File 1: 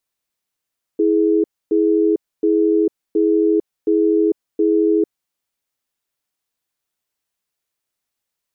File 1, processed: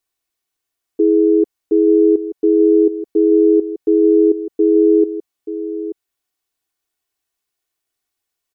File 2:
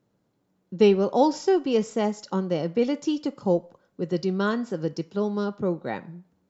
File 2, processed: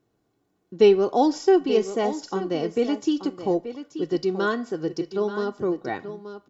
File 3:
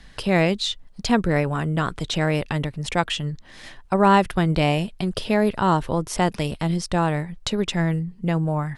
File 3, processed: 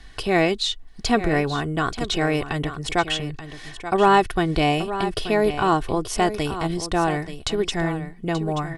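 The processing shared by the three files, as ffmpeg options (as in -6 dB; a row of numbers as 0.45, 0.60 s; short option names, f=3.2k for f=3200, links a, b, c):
-af "aecho=1:1:2.7:0.54,aecho=1:1:881:0.266"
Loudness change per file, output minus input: +4.0, +1.5, 0.0 LU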